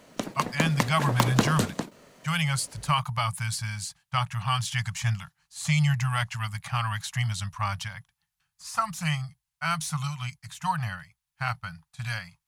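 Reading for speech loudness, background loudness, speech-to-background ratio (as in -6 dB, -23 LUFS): -29.0 LUFS, -29.5 LUFS, 0.5 dB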